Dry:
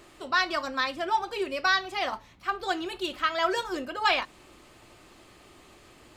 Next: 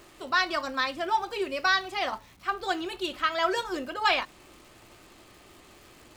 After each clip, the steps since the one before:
surface crackle 390 per second −46 dBFS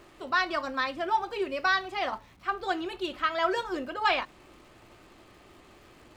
high-shelf EQ 4,200 Hz −10 dB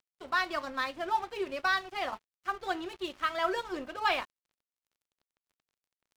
dead-zone distortion −45 dBFS
level −2.5 dB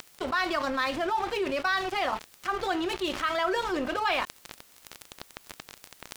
envelope flattener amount 70%
level −1 dB

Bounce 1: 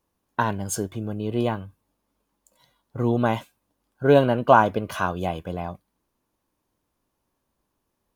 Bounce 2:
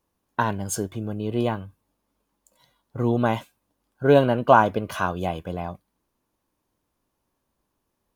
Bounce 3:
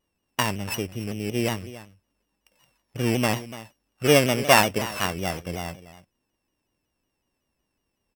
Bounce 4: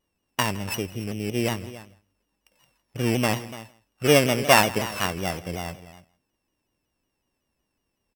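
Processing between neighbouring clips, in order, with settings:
no processing that can be heard
samples sorted by size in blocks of 16 samples; single-tap delay 289 ms −15.5 dB; pitch modulation by a square or saw wave saw down 5.4 Hz, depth 100 cents; level −1.5 dB
single-tap delay 162 ms −20.5 dB

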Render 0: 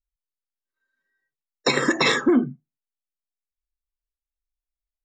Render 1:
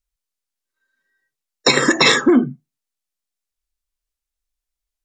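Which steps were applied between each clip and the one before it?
parametric band 7,100 Hz +5 dB 2.2 octaves
level +5 dB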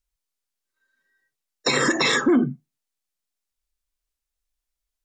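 brickwall limiter −11 dBFS, peak gain reduction 9.5 dB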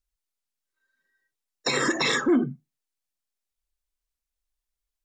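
phase shifter 1.9 Hz, delay 3.3 ms, feedback 25%
level −4 dB

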